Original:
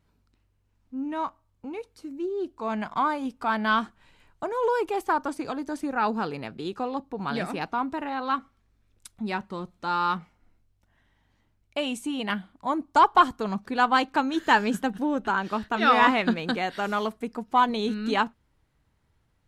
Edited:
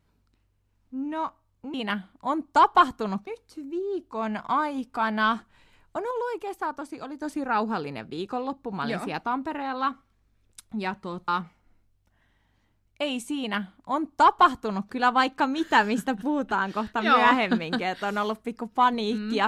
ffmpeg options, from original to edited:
ffmpeg -i in.wav -filter_complex "[0:a]asplit=6[link_01][link_02][link_03][link_04][link_05][link_06];[link_01]atrim=end=1.742[link_07];[link_02]atrim=start=12.138:end=13.672[link_08];[link_03]atrim=start=1.738:end=4.582[link_09];[link_04]atrim=start=4.578:end=5.692,asetpts=PTS-STARTPTS,volume=-5.5dB[link_10];[link_05]atrim=start=5.688:end=9.752[link_11];[link_06]atrim=start=10.038[link_12];[link_07][link_08]acrossfade=duration=0.004:curve1=hsin:curve2=hsin[link_13];[link_13][link_09]acrossfade=duration=0.004:curve1=hsin:curve2=hsin[link_14];[link_14][link_10]acrossfade=duration=0.004:curve1=hsin:curve2=hsin[link_15];[link_15][link_11]acrossfade=duration=0.004:curve1=hsin:curve2=hsin[link_16];[link_16][link_12]acrossfade=duration=0.004:curve1=hsin:curve2=hsin" out.wav

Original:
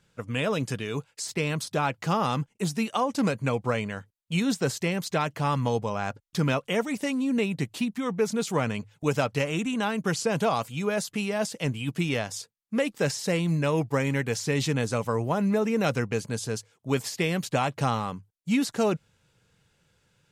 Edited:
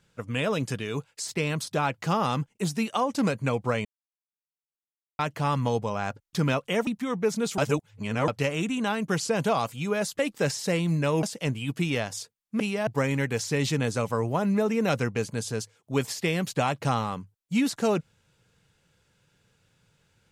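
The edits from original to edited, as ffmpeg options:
ffmpeg -i in.wav -filter_complex "[0:a]asplit=10[link_01][link_02][link_03][link_04][link_05][link_06][link_07][link_08][link_09][link_10];[link_01]atrim=end=3.85,asetpts=PTS-STARTPTS,afade=type=out:start_time=3.846:duration=0.004:curve=hsin[link_11];[link_02]atrim=start=3.85:end=5.19,asetpts=PTS-STARTPTS,volume=0[link_12];[link_03]atrim=start=5.19:end=6.872,asetpts=PTS-STARTPTS,afade=type=in:duration=0.004:curve=hsin[link_13];[link_04]atrim=start=7.828:end=8.542[link_14];[link_05]atrim=start=8.538:end=9.242,asetpts=PTS-STARTPTS,areverse[link_15];[link_06]atrim=start=9.238:end=11.152[link_16];[link_07]atrim=start=12.788:end=13.832[link_17];[link_08]atrim=start=11.418:end=12.792[link_18];[link_09]atrim=start=11.148:end=11.422[link_19];[link_10]atrim=start=13.828[link_20];[link_11][link_12][link_13]concat=n=3:v=0:a=1[link_21];[link_21][link_14]acrossfade=duration=0.004:curve1=hsin:curve2=hsin[link_22];[link_22][link_15]acrossfade=duration=0.004:curve1=hsin:curve2=hsin[link_23];[link_23][link_16]acrossfade=duration=0.004:curve1=hsin:curve2=hsin[link_24];[link_24][link_17]acrossfade=duration=0.004:curve1=hsin:curve2=hsin[link_25];[link_25][link_18]acrossfade=duration=0.004:curve1=hsin:curve2=hsin[link_26];[link_26][link_19]acrossfade=duration=0.004:curve1=hsin:curve2=hsin[link_27];[link_27][link_20]acrossfade=duration=0.004:curve1=hsin:curve2=hsin" out.wav

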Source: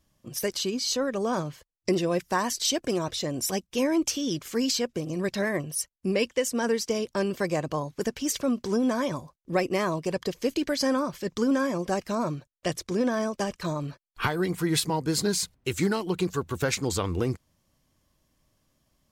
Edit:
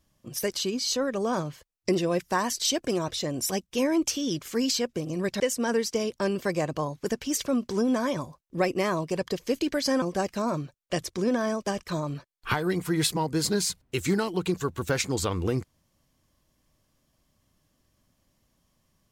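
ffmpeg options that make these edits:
ffmpeg -i in.wav -filter_complex "[0:a]asplit=3[link_01][link_02][link_03];[link_01]atrim=end=5.402[link_04];[link_02]atrim=start=6.348:end=10.972[link_05];[link_03]atrim=start=11.748[link_06];[link_04][link_05]acrossfade=duration=0.004:curve1=hsin:curve2=hsin[link_07];[link_07][link_06]acrossfade=duration=0.004:curve1=hsin:curve2=hsin" out.wav

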